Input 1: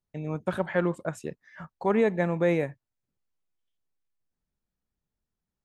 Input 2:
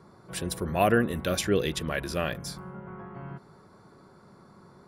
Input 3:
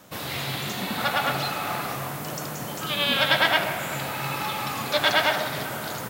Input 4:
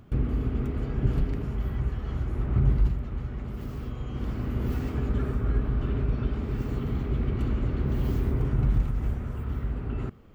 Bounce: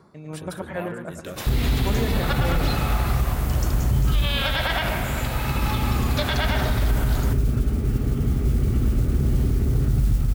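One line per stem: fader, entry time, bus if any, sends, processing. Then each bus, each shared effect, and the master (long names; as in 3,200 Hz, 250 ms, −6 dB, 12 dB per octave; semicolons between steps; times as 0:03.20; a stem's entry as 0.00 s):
−5.0 dB, 0.00 s, no send, echo send −6.5 dB, high-shelf EQ 5,700 Hz +7.5 dB
+1.5 dB, 0.00 s, no send, no echo send, downward compressor, threshold −26 dBFS, peak gain reduction 8.5 dB; automatic ducking −8 dB, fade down 0.20 s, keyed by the first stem
0.0 dB, 1.25 s, no send, no echo send, no processing
+1.5 dB, 1.35 s, no send, no echo send, low-shelf EQ 280 Hz +7 dB; notch filter 1,000 Hz, Q 7.4; noise that follows the level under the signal 27 dB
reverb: not used
echo: repeating echo 110 ms, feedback 52%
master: brickwall limiter −12.5 dBFS, peak gain reduction 9.5 dB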